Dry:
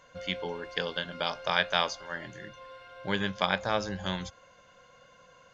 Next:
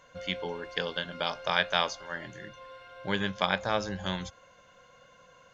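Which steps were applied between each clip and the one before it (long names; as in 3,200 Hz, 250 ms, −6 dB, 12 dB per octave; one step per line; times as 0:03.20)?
notch filter 4,800 Hz, Q 27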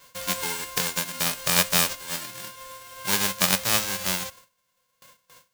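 spectral envelope flattened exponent 0.1
noise gate with hold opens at −44 dBFS
level +6 dB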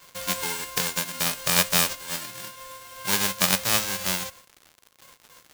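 surface crackle 180 per second −37 dBFS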